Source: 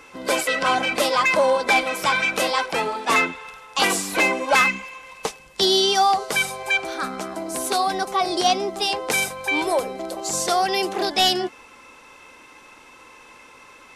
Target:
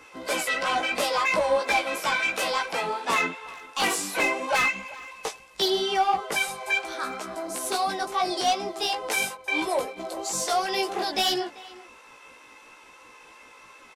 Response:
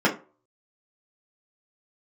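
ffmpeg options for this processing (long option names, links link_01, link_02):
-filter_complex "[0:a]asettb=1/sr,asplit=3[link_01][link_02][link_03];[link_01]atrim=end=1.394[link_04];[link_02]atrim=start=1.39:end=1.98,asetpts=PTS-STARTPTS,afade=type=in:duration=0.004:curve=qsin,afade=type=out:start_time=0.586:duration=0.004:curve=qsin,afreqshift=15[link_05];[link_03]atrim=start=1.976[link_06];[link_04][link_05]acrossfade=duration=0.004:curve1=hsin:curve2=qsin[link_07];[link_07][link_06]acrossfade=duration=0.004:curve1=qsin:curve2=hsin,asettb=1/sr,asplit=3[link_08][link_09][link_10];[link_08]atrim=end=5.684[link_11];[link_09]atrim=start=5.68:end=6.32,asetpts=PTS-STARTPTS,afade=type=in:duration=0.004:curve=qsin,afade=type=out:start_time=0.636:duration=0.004:curve=qsin,highshelf=frequency=3100:width_type=q:width=1.5:gain=-8.5[link_12];[link_10]atrim=start=6.316[link_13];[link_11][link_12]acrossfade=duration=0.004:curve1=hsin:curve2=qsin[link_14];[link_14][link_13]acrossfade=duration=0.004:curve1=qsin:curve2=hsin,asettb=1/sr,asplit=3[link_15][link_16][link_17];[link_15]atrim=end=9.354[link_18];[link_16]atrim=start=9.35:end=9.97,asetpts=PTS-STARTPTS,afade=type=in:duration=0.004:curve=qsin,afade=type=out:start_time=0.616:duration=0.004:curve=qsin,agate=range=-13dB:threshold=-28dB:ratio=16:detection=peak[link_19];[link_17]atrim=start=9.966[link_20];[link_18][link_19]acrossfade=duration=0.004:curve1=hsin:curve2=qsin[link_21];[link_21][link_20]acrossfade=duration=0.004:curve1=qsin:curve2=hsin,acrossover=split=360[link_22][link_23];[link_22]tremolo=f=5.2:d=0.9[link_24];[link_23]asoftclip=type=tanh:threshold=-14dB[link_25];[link_24][link_25]amix=inputs=2:normalize=0,flanger=delay=16:depth=2.4:speed=2.9,asplit=2[link_26][link_27];[link_27]adelay=390,highpass=300,lowpass=3400,asoftclip=type=hard:threshold=-21.5dB,volume=-18dB[link_28];[link_26][link_28]amix=inputs=2:normalize=0"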